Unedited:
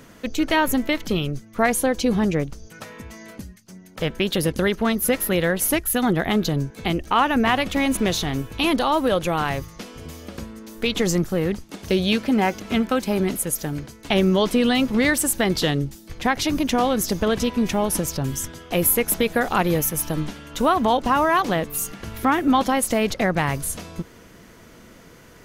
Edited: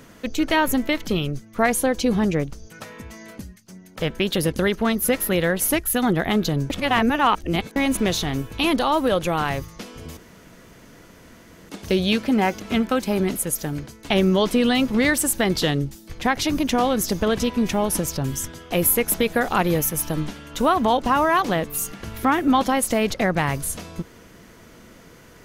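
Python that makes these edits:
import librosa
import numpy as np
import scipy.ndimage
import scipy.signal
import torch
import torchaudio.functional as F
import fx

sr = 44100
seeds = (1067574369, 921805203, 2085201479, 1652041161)

y = fx.edit(x, sr, fx.reverse_span(start_s=6.7, length_s=1.06),
    fx.room_tone_fill(start_s=10.17, length_s=1.52), tone=tone)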